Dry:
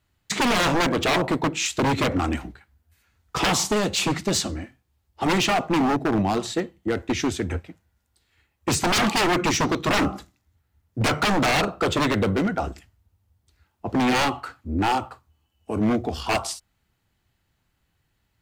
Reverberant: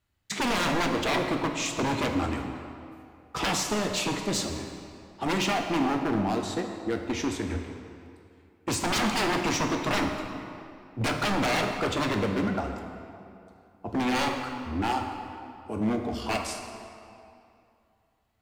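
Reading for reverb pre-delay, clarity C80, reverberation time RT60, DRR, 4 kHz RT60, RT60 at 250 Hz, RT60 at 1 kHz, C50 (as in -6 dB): 3 ms, 6.0 dB, 2.6 s, 3.5 dB, 1.8 s, 2.6 s, 2.6 s, 5.0 dB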